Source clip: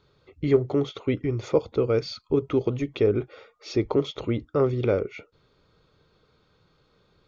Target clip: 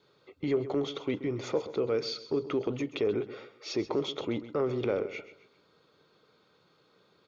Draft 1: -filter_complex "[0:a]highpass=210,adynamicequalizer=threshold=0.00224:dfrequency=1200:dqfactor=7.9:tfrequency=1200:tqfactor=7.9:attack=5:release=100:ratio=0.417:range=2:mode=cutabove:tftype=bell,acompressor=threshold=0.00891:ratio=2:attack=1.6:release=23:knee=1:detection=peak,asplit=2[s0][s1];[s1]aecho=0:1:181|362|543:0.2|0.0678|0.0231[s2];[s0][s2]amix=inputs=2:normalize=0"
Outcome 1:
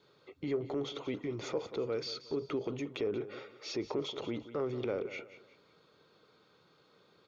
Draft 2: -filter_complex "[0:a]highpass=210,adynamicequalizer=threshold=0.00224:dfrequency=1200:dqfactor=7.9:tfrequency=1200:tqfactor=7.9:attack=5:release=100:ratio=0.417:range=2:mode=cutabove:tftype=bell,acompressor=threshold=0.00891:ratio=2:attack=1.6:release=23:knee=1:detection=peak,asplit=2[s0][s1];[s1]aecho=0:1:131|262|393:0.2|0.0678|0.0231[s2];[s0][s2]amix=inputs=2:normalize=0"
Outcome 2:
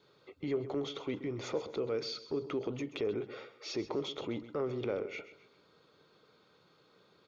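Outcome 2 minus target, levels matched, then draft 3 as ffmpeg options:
compression: peak gain reduction +5.5 dB
-filter_complex "[0:a]highpass=210,adynamicequalizer=threshold=0.00224:dfrequency=1200:dqfactor=7.9:tfrequency=1200:tqfactor=7.9:attack=5:release=100:ratio=0.417:range=2:mode=cutabove:tftype=bell,acompressor=threshold=0.0316:ratio=2:attack=1.6:release=23:knee=1:detection=peak,asplit=2[s0][s1];[s1]aecho=0:1:131|262|393:0.2|0.0678|0.0231[s2];[s0][s2]amix=inputs=2:normalize=0"

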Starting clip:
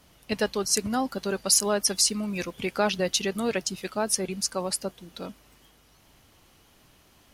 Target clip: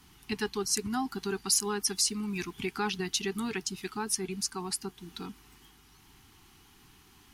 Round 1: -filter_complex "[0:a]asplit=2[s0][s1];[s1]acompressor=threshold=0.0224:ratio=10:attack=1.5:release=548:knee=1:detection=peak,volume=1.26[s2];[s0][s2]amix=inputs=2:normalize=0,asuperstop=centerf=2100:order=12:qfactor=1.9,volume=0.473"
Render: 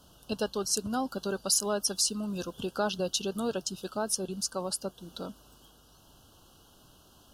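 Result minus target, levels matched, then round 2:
2 kHz band -4.0 dB
-filter_complex "[0:a]asplit=2[s0][s1];[s1]acompressor=threshold=0.0224:ratio=10:attack=1.5:release=548:knee=1:detection=peak,volume=1.26[s2];[s0][s2]amix=inputs=2:normalize=0,asuperstop=centerf=570:order=12:qfactor=1.9,volume=0.473"

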